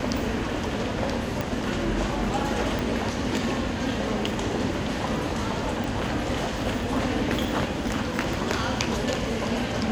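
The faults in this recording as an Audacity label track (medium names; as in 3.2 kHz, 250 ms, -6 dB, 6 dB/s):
1.410000	1.410000	pop -13 dBFS
2.790000	2.790000	pop
5.840000	5.840000	pop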